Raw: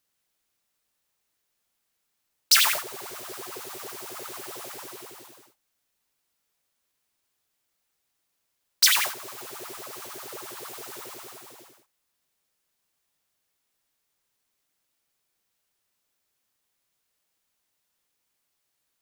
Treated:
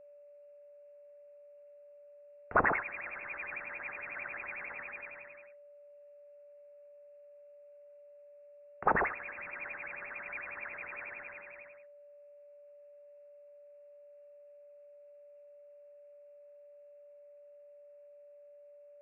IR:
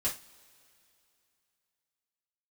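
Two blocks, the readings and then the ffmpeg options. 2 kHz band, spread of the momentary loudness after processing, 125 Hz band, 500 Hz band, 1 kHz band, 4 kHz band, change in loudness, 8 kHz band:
-2.5 dB, 22 LU, +5.5 dB, +2.5 dB, +1.5 dB, under -40 dB, -12.5 dB, under -40 dB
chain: -af "lowpass=f=2400:t=q:w=0.5098,lowpass=f=2400:t=q:w=0.6013,lowpass=f=2400:t=q:w=0.9,lowpass=f=2400:t=q:w=2.563,afreqshift=-2800,aeval=exprs='val(0)+0.00224*sin(2*PI*580*n/s)':c=same"

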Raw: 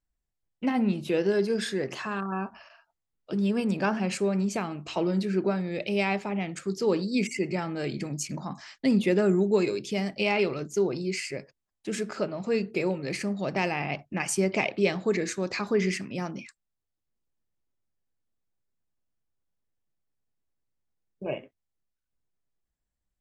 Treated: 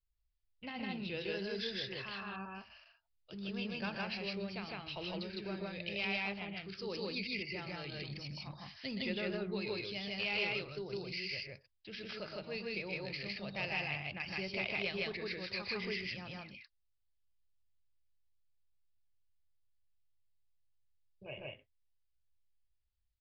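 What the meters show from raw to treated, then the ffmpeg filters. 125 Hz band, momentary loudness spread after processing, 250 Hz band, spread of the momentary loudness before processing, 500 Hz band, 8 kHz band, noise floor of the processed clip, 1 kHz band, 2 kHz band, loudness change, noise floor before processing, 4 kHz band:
-13.5 dB, 11 LU, -15.5 dB, 10 LU, -15.0 dB, under -25 dB, -79 dBFS, -13.0 dB, -5.5 dB, -11.5 dB, -84 dBFS, -2.0 dB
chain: -af "firequalizer=gain_entry='entry(100,0);entry(150,-14);entry(270,-21);entry(500,-15);entry(1200,-14);entry(2800,-3)':delay=0.05:min_phase=1,aresample=11025,volume=26.6,asoftclip=hard,volume=0.0376,aresample=44100,aecho=1:1:122.4|157.4:0.355|1,volume=0.841"

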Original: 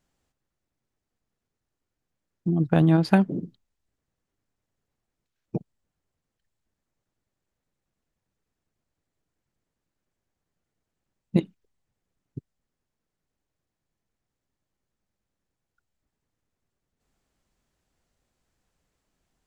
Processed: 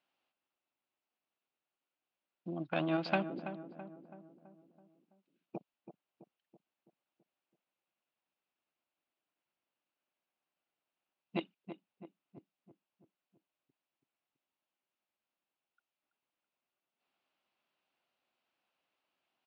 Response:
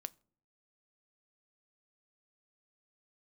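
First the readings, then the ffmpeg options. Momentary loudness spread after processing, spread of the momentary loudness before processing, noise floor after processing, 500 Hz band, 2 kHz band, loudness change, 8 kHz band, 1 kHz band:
23 LU, 16 LU, under -85 dBFS, -9.0 dB, -5.5 dB, -15.5 dB, no reading, -7.5 dB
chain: -filter_complex "[0:a]aeval=exprs='(tanh(3.16*val(0)+0.6)-tanh(0.6))/3.16':c=same,highpass=450,equalizer=f=450:t=q:w=4:g=-8,equalizer=f=1800:t=q:w=4:g=-5,equalizer=f=2700:t=q:w=4:g=6,lowpass=f=4100:w=0.5412,lowpass=f=4100:w=1.3066,asplit=2[s0][s1];[s1]adelay=330,lowpass=f=1400:p=1,volume=0.316,asplit=2[s2][s3];[s3]adelay=330,lowpass=f=1400:p=1,volume=0.55,asplit=2[s4][s5];[s5]adelay=330,lowpass=f=1400:p=1,volume=0.55,asplit=2[s6][s7];[s7]adelay=330,lowpass=f=1400:p=1,volume=0.55,asplit=2[s8][s9];[s9]adelay=330,lowpass=f=1400:p=1,volume=0.55,asplit=2[s10][s11];[s11]adelay=330,lowpass=f=1400:p=1,volume=0.55[s12];[s2][s4][s6][s8][s10][s12]amix=inputs=6:normalize=0[s13];[s0][s13]amix=inputs=2:normalize=0"

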